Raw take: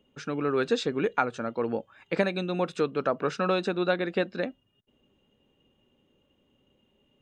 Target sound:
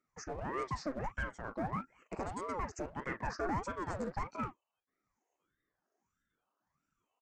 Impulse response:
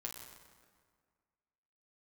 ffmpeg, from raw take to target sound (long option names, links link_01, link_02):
-filter_complex "[0:a]afftfilt=real='re*pow(10,16/40*sin(2*PI*(0.59*log(max(b,1)*sr/1024/100)/log(2)-(1.2)*(pts-256)/sr)))':imag='im*pow(10,16/40*sin(2*PI*(0.59*log(max(b,1)*sr/1024/100)/log(2)-(1.2)*(pts-256)/sr)))':win_size=1024:overlap=0.75,equalizer=frequency=250:width_type=o:width=1:gain=-9,equalizer=frequency=2000:width_type=o:width=1:gain=-10,equalizer=frequency=4000:width_type=o:width=1:gain=4,aresample=16000,asoftclip=type=tanh:threshold=-27.5dB,aresample=44100,asuperstop=centerf=3400:order=4:qfactor=0.86,acrossover=split=630|3900[link_01][link_02][link_03];[link_01]aeval=exprs='sgn(val(0))*max(abs(val(0))-0.00168,0)':channel_layout=same[link_04];[link_02]asplit=2[link_05][link_06];[link_06]adelay=38,volume=-7dB[link_07];[link_05][link_07]amix=inputs=2:normalize=0[link_08];[link_04][link_08][link_03]amix=inputs=3:normalize=0,aeval=exprs='val(0)*sin(2*PI*470*n/s+470*0.75/1.6*sin(2*PI*1.6*n/s))':channel_layout=same,volume=-1.5dB"